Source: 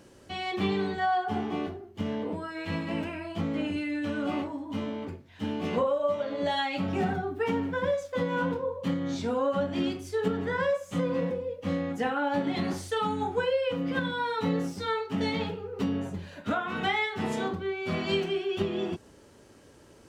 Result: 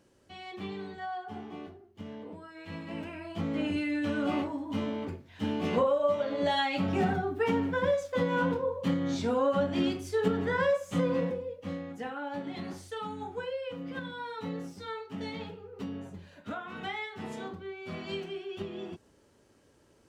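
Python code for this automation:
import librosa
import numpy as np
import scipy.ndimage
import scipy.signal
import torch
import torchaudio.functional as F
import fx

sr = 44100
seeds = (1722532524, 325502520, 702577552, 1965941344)

y = fx.gain(x, sr, db=fx.line((2.54, -11.0), (3.73, 0.5), (11.11, 0.5), (11.86, -9.0)))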